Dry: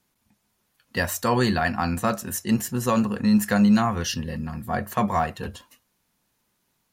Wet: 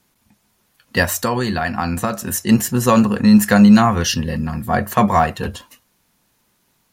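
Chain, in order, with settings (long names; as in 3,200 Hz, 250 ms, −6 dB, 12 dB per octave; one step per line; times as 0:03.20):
0:01.03–0:02.49: downward compressor 6 to 1, threshold −25 dBFS, peak gain reduction 8.5 dB
level +8.5 dB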